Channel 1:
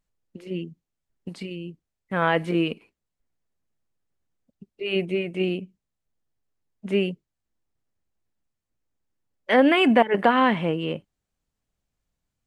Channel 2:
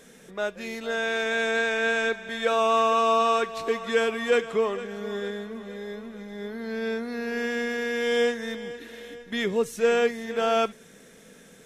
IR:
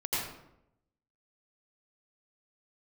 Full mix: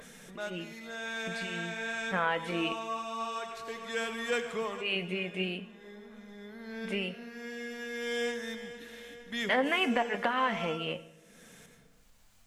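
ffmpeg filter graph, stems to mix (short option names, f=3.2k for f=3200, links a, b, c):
-filter_complex "[0:a]equalizer=f=110:w=0.74:g=-10,acompressor=threshold=-22dB:ratio=6,flanger=delay=7.5:depth=4.4:regen=61:speed=0.31:shape=triangular,volume=3dB,asplit=3[a][b][c];[b]volume=-23dB[d];[1:a]adynamicequalizer=threshold=0.01:dfrequency=4300:dqfactor=0.7:tfrequency=4300:tqfactor=0.7:attack=5:release=100:ratio=0.375:range=2:mode=boostabove:tftype=highshelf,volume=-6dB,asplit=2[e][f];[f]volume=-16.5dB[g];[c]apad=whole_len=514165[h];[e][h]sidechaincompress=threshold=-41dB:ratio=8:attack=8.9:release=1230[i];[2:a]atrim=start_sample=2205[j];[d][g]amix=inputs=2:normalize=0[k];[k][j]afir=irnorm=-1:irlink=0[l];[a][i][l]amix=inputs=3:normalize=0,equalizer=f=370:t=o:w=1.1:g=-8,acompressor=mode=upward:threshold=-43dB:ratio=2.5"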